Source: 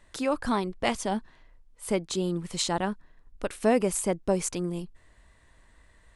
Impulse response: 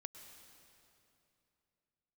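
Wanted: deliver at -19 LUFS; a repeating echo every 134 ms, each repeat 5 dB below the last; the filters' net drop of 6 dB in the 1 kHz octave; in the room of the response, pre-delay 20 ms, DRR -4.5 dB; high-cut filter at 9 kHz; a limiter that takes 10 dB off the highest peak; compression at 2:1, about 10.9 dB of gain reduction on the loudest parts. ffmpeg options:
-filter_complex "[0:a]lowpass=9000,equalizer=f=1000:t=o:g=-8.5,acompressor=threshold=0.0112:ratio=2,alimiter=level_in=2.11:limit=0.0631:level=0:latency=1,volume=0.473,aecho=1:1:134|268|402|536|670|804|938:0.562|0.315|0.176|0.0988|0.0553|0.031|0.0173,asplit=2[s0][s1];[1:a]atrim=start_sample=2205,adelay=20[s2];[s1][s2]afir=irnorm=-1:irlink=0,volume=2.99[s3];[s0][s3]amix=inputs=2:normalize=0,volume=6.31"

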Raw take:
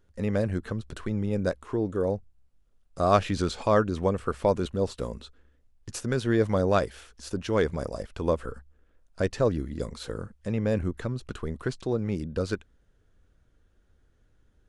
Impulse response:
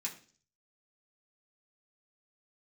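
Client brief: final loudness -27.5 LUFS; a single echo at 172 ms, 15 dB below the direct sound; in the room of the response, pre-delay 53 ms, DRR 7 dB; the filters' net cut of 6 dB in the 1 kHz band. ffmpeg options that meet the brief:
-filter_complex "[0:a]equalizer=f=1000:t=o:g=-8.5,aecho=1:1:172:0.178,asplit=2[s0][s1];[1:a]atrim=start_sample=2205,adelay=53[s2];[s1][s2]afir=irnorm=-1:irlink=0,volume=0.447[s3];[s0][s3]amix=inputs=2:normalize=0,volume=1.19"

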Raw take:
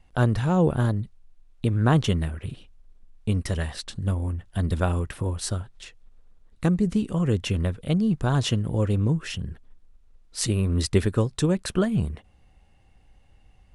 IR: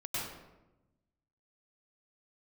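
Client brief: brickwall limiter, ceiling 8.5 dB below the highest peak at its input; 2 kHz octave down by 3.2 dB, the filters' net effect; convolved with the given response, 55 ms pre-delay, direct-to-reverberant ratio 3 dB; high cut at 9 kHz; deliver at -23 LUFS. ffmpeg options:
-filter_complex "[0:a]lowpass=9000,equalizer=f=2000:t=o:g=-4.5,alimiter=limit=0.168:level=0:latency=1,asplit=2[s0][s1];[1:a]atrim=start_sample=2205,adelay=55[s2];[s1][s2]afir=irnorm=-1:irlink=0,volume=0.447[s3];[s0][s3]amix=inputs=2:normalize=0,volume=1.26"

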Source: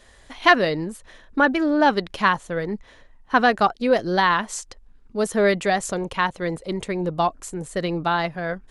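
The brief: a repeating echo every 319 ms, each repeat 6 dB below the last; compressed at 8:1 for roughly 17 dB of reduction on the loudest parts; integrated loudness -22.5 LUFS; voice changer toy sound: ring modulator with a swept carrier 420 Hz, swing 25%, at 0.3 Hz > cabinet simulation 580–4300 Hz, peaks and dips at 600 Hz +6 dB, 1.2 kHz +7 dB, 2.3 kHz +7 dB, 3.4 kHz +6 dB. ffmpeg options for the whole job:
-af "acompressor=threshold=0.0398:ratio=8,aecho=1:1:319|638|957|1276|1595|1914:0.501|0.251|0.125|0.0626|0.0313|0.0157,aeval=exprs='val(0)*sin(2*PI*420*n/s+420*0.25/0.3*sin(2*PI*0.3*n/s))':c=same,highpass=580,equalizer=f=600:t=q:w=4:g=6,equalizer=f=1200:t=q:w=4:g=7,equalizer=f=2300:t=q:w=4:g=7,equalizer=f=3400:t=q:w=4:g=6,lowpass=f=4300:w=0.5412,lowpass=f=4300:w=1.3066,volume=3.55"

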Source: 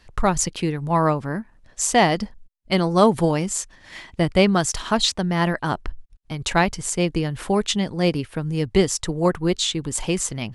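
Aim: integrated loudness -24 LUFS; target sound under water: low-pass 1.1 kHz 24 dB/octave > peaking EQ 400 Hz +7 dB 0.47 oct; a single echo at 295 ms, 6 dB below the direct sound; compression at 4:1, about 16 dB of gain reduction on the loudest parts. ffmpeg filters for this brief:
-af "acompressor=threshold=0.0282:ratio=4,lowpass=f=1100:w=0.5412,lowpass=f=1100:w=1.3066,equalizer=f=400:t=o:w=0.47:g=7,aecho=1:1:295:0.501,volume=2.66"

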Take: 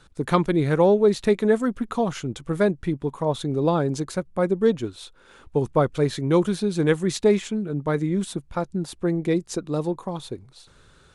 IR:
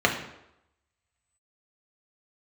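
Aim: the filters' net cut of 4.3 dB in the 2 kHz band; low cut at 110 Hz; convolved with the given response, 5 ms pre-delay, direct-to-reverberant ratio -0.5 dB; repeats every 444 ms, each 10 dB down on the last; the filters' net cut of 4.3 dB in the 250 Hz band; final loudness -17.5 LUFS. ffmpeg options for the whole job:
-filter_complex "[0:a]highpass=110,equalizer=f=250:t=o:g=-6,equalizer=f=2000:t=o:g=-5.5,aecho=1:1:444|888|1332|1776:0.316|0.101|0.0324|0.0104,asplit=2[s0][s1];[1:a]atrim=start_sample=2205,adelay=5[s2];[s1][s2]afir=irnorm=-1:irlink=0,volume=0.15[s3];[s0][s3]amix=inputs=2:normalize=0,volume=1.68"

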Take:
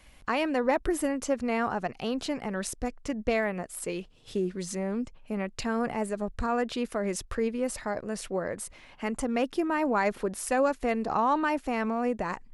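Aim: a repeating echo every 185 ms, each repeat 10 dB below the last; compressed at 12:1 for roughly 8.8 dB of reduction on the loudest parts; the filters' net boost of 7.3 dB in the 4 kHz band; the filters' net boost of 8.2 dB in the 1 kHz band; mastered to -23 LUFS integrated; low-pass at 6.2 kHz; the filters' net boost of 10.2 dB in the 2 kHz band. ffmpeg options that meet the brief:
-af "lowpass=6200,equalizer=f=1000:t=o:g=8,equalizer=f=2000:t=o:g=8.5,equalizer=f=4000:t=o:g=6.5,acompressor=threshold=0.0794:ratio=12,aecho=1:1:185|370|555|740:0.316|0.101|0.0324|0.0104,volume=1.88"

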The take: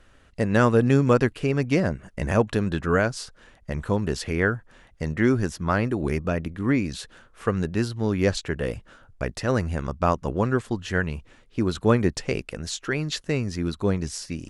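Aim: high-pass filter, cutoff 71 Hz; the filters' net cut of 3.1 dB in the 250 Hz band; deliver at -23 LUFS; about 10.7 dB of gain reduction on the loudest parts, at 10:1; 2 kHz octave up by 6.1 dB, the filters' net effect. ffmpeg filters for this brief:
-af "highpass=71,equalizer=f=250:t=o:g=-4,equalizer=f=2000:t=o:g=8,acompressor=threshold=0.0562:ratio=10,volume=2.66"

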